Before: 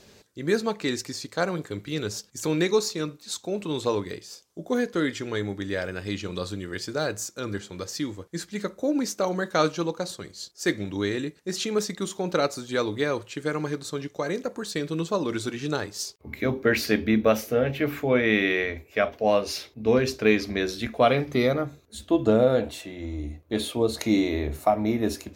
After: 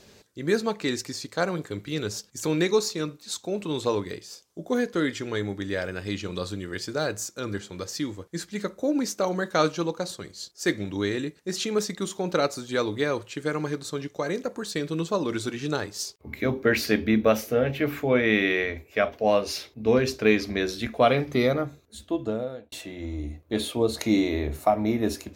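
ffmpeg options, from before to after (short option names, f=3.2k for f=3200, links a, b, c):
-filter_complex "[0:a]asplit=2[a][b];[a]atrim=end=22.72,asetpts=PTS-STARTPTS,afade=t=out:st=21.61:d=1.11[c];[b]atrim=start=22.72,asetpts=PTS-STARTPTS,afade=t=in:d=0.004:c=hsin[d];[c][d]concat=n=2:v=0:a=1"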